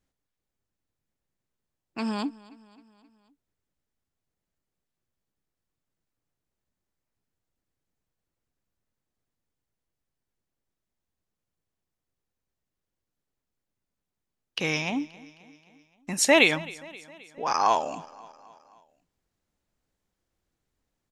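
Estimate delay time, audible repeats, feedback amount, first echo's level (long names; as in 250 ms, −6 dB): 264 ms, 3, 57%, −21.0 dB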